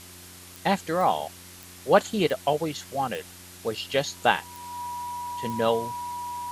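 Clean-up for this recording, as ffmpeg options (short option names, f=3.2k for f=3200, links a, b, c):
-af "adeclick=t=4,bandreject=f=90:t=h:w=4,bandreject=f=180:t=h:w=4,bandreject=f=270:t=h:w=4,bandreject=f=360:t=h:w=4,bandreject=f=970:w=30,afwtdn=0.0056"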